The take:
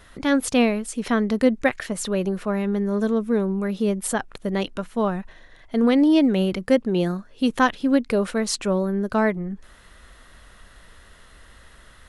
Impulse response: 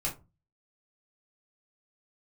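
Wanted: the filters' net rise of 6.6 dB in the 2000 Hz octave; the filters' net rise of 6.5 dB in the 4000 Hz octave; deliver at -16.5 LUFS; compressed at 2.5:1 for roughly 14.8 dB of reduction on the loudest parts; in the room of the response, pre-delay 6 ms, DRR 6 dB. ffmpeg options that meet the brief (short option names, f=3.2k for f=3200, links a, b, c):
-filter_complex "[0:a]equalizer=f=2k:t=o:g=7,equalizer=f=4k:t=o:g=6,acompressor=threshold=-35dB:ratio=2.5,asplit=2[a][b];[1:a]atrim=start_sample=2205,adelay=6[c];[b][c]afir=irnorm=-1:irlink=0,volume=-10.5dB[d];[a][d]amix=inputs=2:normalize=0,volume=16dB"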